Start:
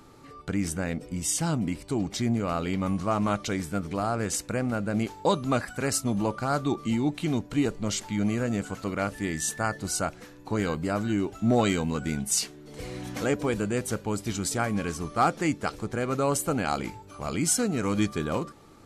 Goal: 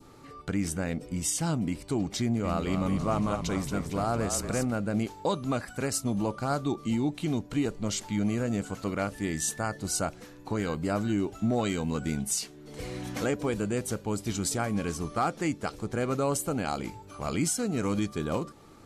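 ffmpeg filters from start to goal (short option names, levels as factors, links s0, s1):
-filter_complex "[0:a]adynamicequalizer=threshold=0.00631:dfrequency=1700:dqfactor=0.95:tfrequency=1700:tqfactor=0.95:attack=5:release=100:ratio=0.375:range=2:mode=cutabove:tftype=bell,alimiter=limit=0.126:level=0:latency=1:release=310,asettb=1/sr,asplit=3[s0][s1][s2];[s0]atrim=end=2.214[s3];[s1]atrim=start=2.21:end=4.65,asetpts=PTS-STARTPTS,afade=t=in:d=0.004:c=qsin,afade=t=out:st=2.436:d=0.004:c=qsin,asplit=7[s4][s5][s6][s7][s8][s9][s10];[s5]adelay=227,afreqshift=-37,volume=0.447[s11];[s6]adelay=454,afreqshift=-74,volume=0.214[s12];[s7]adelay=681,afreqshift=-111,volume=0.102[s13];[s8]adelay=908,afreqshift=-148,volume=0.0495[s14];[s9]adelay=1135,afreqshift=-185,volume=0.0237[s15];[s10]adelay=1362,afreqshift=-222,volume=0.0114[s16];[s4][s11][s12][s13][s14][s15][s16]amix=inputs=7:normalize=0,atrim=end_sample=107604[s17];[s2]atrim=start=4.646[s18];[s3][s17]acrossfade=d=0.004:c1=hsin:c2=qsin[s19];[s19][s18]acrossfade=d=0.004:c1=qsin:c2=hsin"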